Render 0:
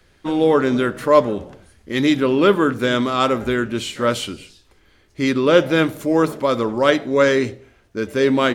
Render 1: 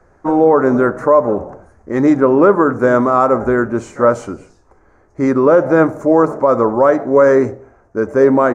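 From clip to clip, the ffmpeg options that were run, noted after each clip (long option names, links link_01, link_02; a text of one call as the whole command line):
ffmpeg -i in.wav -af "firequalizer=gain_entry='entry(200,0);entry(720,9);entry(1300,4);entry(3200,-28);entry(6300,-6);entry(12000,-22)':delay=0.05:min_phase=1,alimiter=limit=-5dB:level=0:latency=1:release=123,volume=3.5dB" out.wav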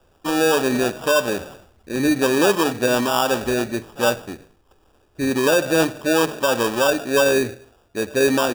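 ffmpeg -i in.wav -af "acrusher=samples=21:mix=1:aa=0.000001,volume=-7dB" out.wav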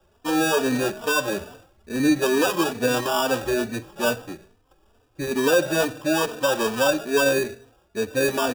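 ffmpeg -i in.wav -filter_complex "[0:a]asplit=2[link_01][link_02];[link_02]adelay=3.2,afreqshift=2.3[link_03];[link_01][link_03]amix=inputs=2:normalize=1" out.wav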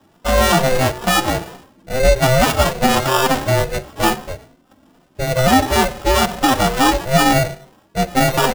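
ffmpeg -i in.wav -af "aeval=exprs='val(0)*sin(2*PI*260*n/s)':channel_layout=same,alimiter=level_in=11.5dB:limit=-1dB:release=50:level=0:latency=1,volume=-1dB" out.wav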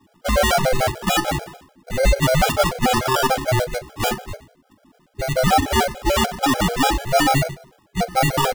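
ffmpeg -i in.wav -af "afftfilt=real='re*gt(sin(2*PI*6.8*pts/sr)*(1-2*mod(floor(b*sr/1024/420),2)),0)':imag='im*gt(sin(2*PI*6.8*pts/sr)*(1-2*mod(floor(b*sr/1024/420),2)),0)':win_size=1024:overlap=0.75" out.wav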